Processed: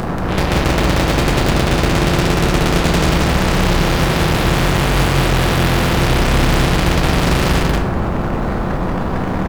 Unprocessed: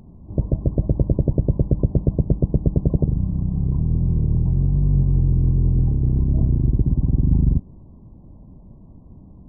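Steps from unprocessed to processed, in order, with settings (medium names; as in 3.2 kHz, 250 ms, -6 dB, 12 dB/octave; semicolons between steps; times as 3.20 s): in parallel at -5.5 dB: fuzz box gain 44 dB, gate -52 dBFS; on the sum: loudspeakers at several distances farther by 11 m -9 dB, 63 m -2 dB; simulated room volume 160 m³, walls mixed, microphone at 0.72 m; spectrum-flattening compressor 2:1; trim -5 dB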